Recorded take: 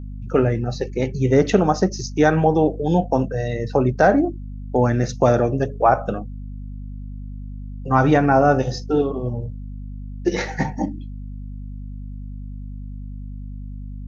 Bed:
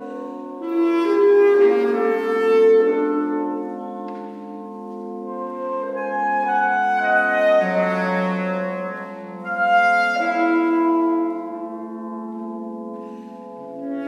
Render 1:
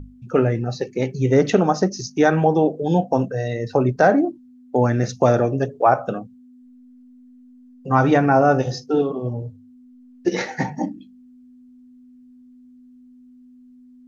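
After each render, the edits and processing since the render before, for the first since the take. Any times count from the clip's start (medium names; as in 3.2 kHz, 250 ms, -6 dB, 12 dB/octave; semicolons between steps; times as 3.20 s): hum notches 50/100/150/200 Hz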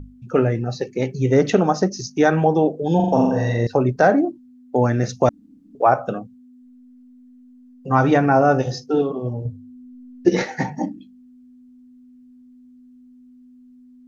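2.95–3.67 s: flutter echo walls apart 7.3 m, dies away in 0.94 s; 5.29–5.75 s: room tone; 9.45–10.44 s: bass shelf 430 Hz +8 dB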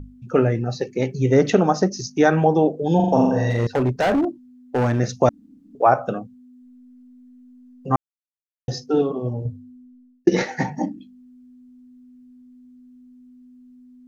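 3.50–5.00 s: overload inside the chain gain 15.5 dB; 7.96–8.68 s: mute; 9.53–10.27 s: fade out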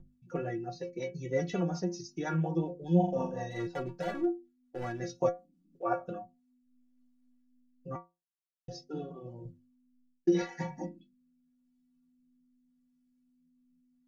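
inharmonic resonator 170 Hz, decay 0.25 s, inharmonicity 0.008; rotary cabinet horn 5.5 Hz, later 0.85 Hz, at 5.88 s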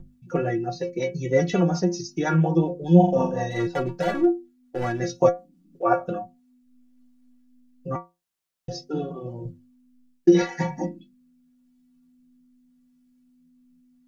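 trim +10.5 dB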